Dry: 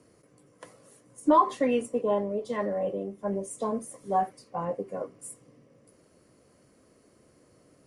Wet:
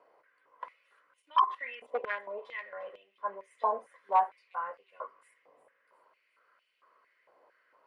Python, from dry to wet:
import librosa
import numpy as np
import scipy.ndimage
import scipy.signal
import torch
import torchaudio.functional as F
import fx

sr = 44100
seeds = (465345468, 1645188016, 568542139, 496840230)

p1 = x + 0.32 * np.pad(x, (int(2.0 * sr / 1000.0), 0))[:len(x)]
p2 = fx.level_steps(p1, sr, step_db=14, at=(1.22, 1.92))
p3 = 10.0 ** (-19.5 / 20.0) * (np.abs((p2 / 10.0 ** (-19.5 / 20.0) + 3.0) % 4.0 - 2.0) - 1.0)
p4 = fx.air_absorb(p3, sr, metres=420.0)
p5 = p4 + fx.echo_wet_highpass(p4, sr, ms=355, feedback_pct=49, hz=4700.0, wet_db=-13.0, dry=0)
y = fx.filter_held_highpass(p5, sr, hz=4.4, low_hz=790.0, high_hz=2800.0)